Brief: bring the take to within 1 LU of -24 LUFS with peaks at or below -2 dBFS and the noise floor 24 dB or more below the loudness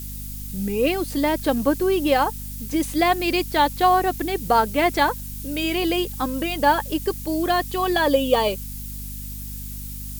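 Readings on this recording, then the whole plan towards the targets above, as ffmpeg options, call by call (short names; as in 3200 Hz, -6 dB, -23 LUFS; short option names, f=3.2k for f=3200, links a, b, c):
hum 50 Hz; harmonics up to 250 Hz; hum level -32 dBFS; noise floor -33 dBFS; noise floor target -46 dBFS; loudness -21.5 LUFS; peak -5.5 dBFS; loudness target -24.0 LUFS
-> -af "bandreject=f=50:t=h:w=6,bandreject=f=100:t=h:w=6,bandreject=f=150:t=h:w=6,bandreject=f=200:t=h:w=6,bandreject=f=250:t=h:w=6"
-af "afftdn=nr=13:nf=-33"
-af "volume=-2.5dB"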